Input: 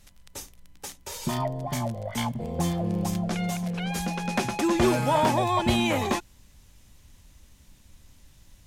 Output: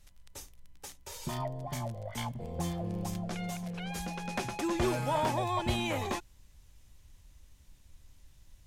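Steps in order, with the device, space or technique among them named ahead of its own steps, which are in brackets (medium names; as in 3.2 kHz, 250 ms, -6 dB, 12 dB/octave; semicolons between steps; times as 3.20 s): low shelf boost with a cut just above (bass shelf 77 Hz +6.5 dB; peaking EQ 220 Hz -5 dB 0.63 oct); trim -7.5 dB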